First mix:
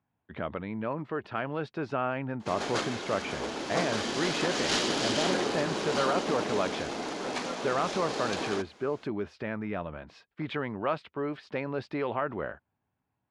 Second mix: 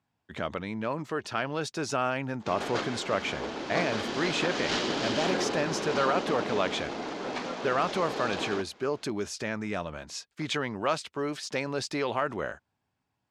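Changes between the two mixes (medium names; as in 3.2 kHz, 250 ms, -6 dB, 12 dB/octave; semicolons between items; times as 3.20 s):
speech: remove distance through air 420 m; background: add distance through air 90 m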